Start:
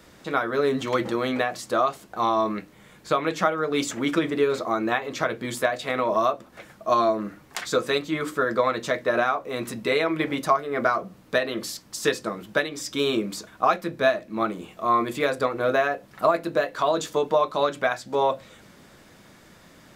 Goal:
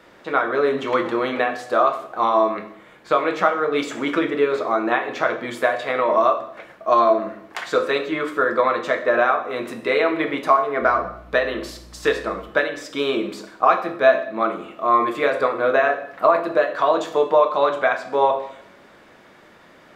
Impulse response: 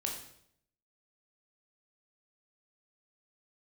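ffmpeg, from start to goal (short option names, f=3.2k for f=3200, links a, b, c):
-filter_complex "[0:a]bass=f=250:g=-12,treble=f=4k:g=-14,asettb=1/sr,asplit=3[a][b][c];[a]atrim=end=10.824[d];[b]atrim=start=10.82:end=12.49,asetpts=PTS-STARTPTS,afade=t=in:d=0.004:c=qsin,afade=t=out:st=1.666:d=0.004:c=qsin,aeval=exprs='val(0)+0.00398*(sin(2*PI*60*n/s)+sin(2*PI*2*60*n/s)/2+sin(2*PI*3*60*n/s)/3+sin(2*PI*4*60*n/s)/4+sin(2*PI*5*60*n/s)/5)':c=same[e];[c]atrim=start=12.486[f];[d][e]acrossfade=d=0.004:c1=hsin:c2=qsin[g];[g][f]acrossfade=d=0.004:c1=qsin:c2=hsin,asplit=2[h][i];[1:a]atrim=start_sample=2205[j];[i][j]afir=irnorm=-1:irlink=0,volume=0dB[k];[h][k]amix=inputs=2:normalize=0,volume=-1dB"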